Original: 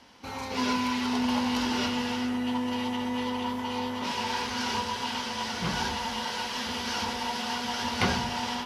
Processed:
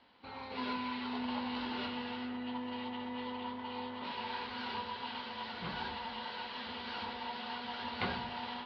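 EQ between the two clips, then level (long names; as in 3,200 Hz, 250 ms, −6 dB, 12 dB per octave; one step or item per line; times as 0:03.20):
transistor ladder low-pass 4,700 Hz, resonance 65%
high-frequency loss of the air 440 metres
low-shelf EQ 270 Hz −7.5 dB
+4.5 dB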